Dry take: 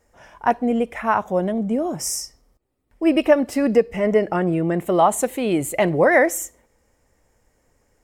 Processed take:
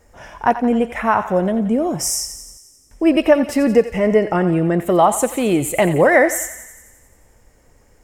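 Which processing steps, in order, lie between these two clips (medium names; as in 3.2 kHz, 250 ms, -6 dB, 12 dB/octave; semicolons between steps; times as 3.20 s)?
bass shelf 110 Hz +5 dB; in parallel at +2 dB: compression, threshold -31 dBFS, peak gain reduction 20 dB; on the sum: thinning echo 88 ms, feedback 66%, high-pass 750 Hz, level -11 dB; trim +1 dB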